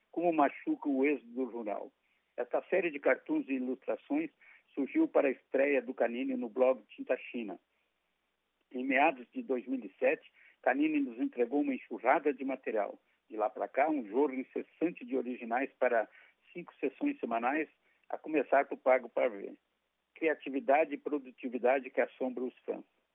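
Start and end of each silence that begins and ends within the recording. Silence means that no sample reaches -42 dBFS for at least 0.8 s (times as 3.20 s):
7.56–8.75 s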